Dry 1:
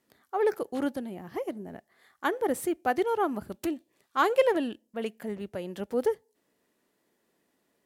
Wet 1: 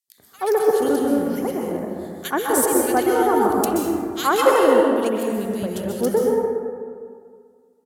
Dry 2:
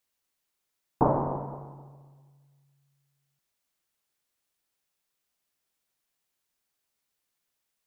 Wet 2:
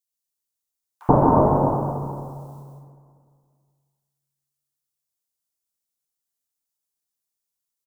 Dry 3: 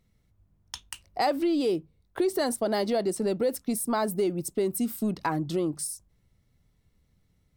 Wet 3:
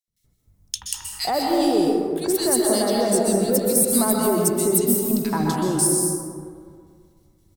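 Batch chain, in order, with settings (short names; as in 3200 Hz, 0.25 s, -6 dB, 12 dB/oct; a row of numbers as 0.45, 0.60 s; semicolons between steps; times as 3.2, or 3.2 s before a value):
gate with hold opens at -58 dBFS; tone controls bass +4 dB, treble +12 dB; bands offset in time highs, lows 80 ms, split 2000 Hz; plate-style reverb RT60 2.1 s, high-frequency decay 0.35×, pre-delay 0.115 s, DRR -1.5 dB; match loudness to -20 LUFS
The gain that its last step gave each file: +5.5, +6.0, +1.5 dB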